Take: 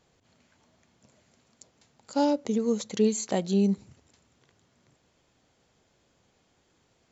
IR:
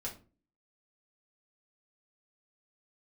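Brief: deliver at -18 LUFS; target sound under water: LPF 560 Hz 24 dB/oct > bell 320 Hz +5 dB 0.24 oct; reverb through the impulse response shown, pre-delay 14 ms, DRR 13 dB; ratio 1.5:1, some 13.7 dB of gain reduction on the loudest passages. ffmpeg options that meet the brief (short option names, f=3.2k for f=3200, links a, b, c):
-filter_complex "[0:a]acompressor=threshold=-59dB:ratio=1.5,asplit=2[a][b];[1:a]atrim=start_sample=2205,adelay=14[c];[b][c]afir=irnorm=-1:irlink=0,volume=-13dB[d];[a][d]amix=inputs=2:normalize=0,lowpass=f=560:w=0.5412,lowpass=f=560:w=1.3066,equalizer=f=320:t=o:w=0.24:g=5,volume=22dB"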